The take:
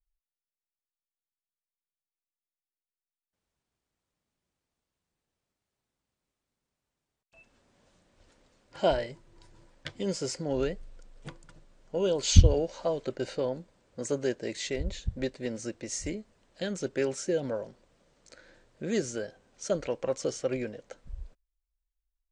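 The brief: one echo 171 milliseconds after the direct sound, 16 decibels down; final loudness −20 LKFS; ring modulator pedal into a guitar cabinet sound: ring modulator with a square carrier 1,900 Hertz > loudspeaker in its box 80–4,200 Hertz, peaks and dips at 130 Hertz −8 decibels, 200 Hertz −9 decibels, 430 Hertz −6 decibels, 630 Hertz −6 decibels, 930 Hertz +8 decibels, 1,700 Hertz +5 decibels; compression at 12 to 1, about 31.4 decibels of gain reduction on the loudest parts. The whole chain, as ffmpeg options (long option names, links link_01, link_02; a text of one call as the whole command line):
ffmpeg -i in.wav -af "acompressor=threshold=-41dB:ratio=12,aecho=1:1:171:0.158,aeval=exprs='val(0)*sgn(sin(2*PI*1900*n/s))':channel_layout=same,highpass=80,equalizer=frequency=130:width_type=q:width=4:gain=-8,equalizer=frequency=200:width_type=q:width=4:gain=-9,equalizer=frequency=430:width_type=q:width=4:gain=-6,equalizer=frequency=630:width_type=q:width=4:gain=-6,equalizer=frequency=930:width_type=q:width=4:gain=8,equalizer=frequency=1700:width_type=q:width=4:gain=5,lowpass=frequency=4200:width=0.5412,lowpass=frequency=4200:width=1.3066,volume=23.5dB" out.wav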